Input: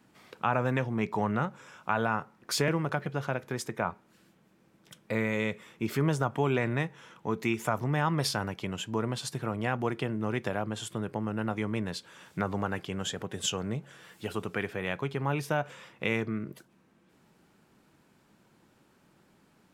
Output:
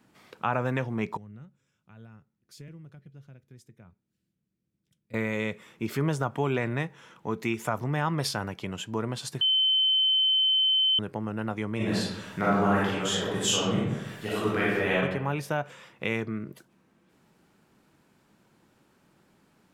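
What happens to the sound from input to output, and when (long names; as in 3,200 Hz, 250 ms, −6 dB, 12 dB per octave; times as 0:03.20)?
0:01.17–0:05.14: guitar amp tone stack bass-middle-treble 10-0-1
0:09.41–0:10.99: beep over 3,070 Hz −20 dBFS
0:11.76–0:14.99: thrown reverb, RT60 1 s, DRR −7.5 dB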